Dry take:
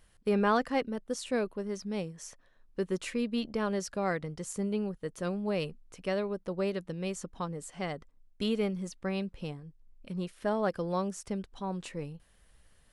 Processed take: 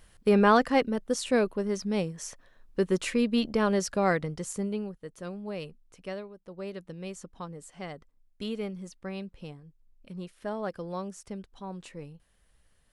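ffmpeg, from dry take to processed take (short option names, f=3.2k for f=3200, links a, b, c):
-af "volume=16dB,afade=t=out:st=4.11:d=0.87:silence=0.281838,afade=t=out:st=6.12:d=0.21:silence=0.354813,afade=t=in:st=6.33:d=0.52:silence=0.316228"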